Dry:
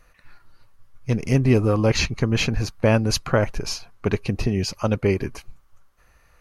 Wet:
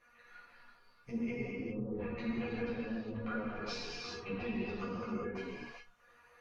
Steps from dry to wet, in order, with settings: HPF 59 Hz 6 dB/oct; treble ducked by the level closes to 870 Hz, closed at -14 dBFS; tone controls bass -4 dB, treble -10 dB; treble ducked by the level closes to 330 Hz, closed at -18.5 dBFS; low shelf 170 Hz -9.5 dB; negative-ratio compressor -30 dBFS, ratio -0.5; limiter -24 dBFS, peak gain reduction 7 dB; resonator 240 Hz, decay 0.23 s, harmonics all, mix 90%; non-linear reverb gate 0.43 s flat, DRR -5 dB; ensemble effect; gain +5.5 dB

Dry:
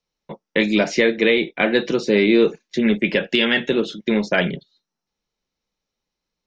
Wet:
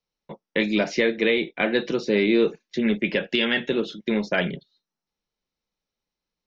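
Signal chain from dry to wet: LPF 6400 Hz 24 dB/oct; gain -4.5 dB

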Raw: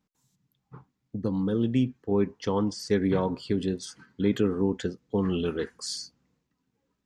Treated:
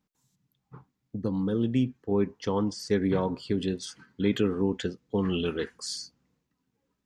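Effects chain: 3.58–5.78 dynamic EQ 2800 Hz, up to +6 dB, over -52 dBFS, Q 1.2; gain -1 dB

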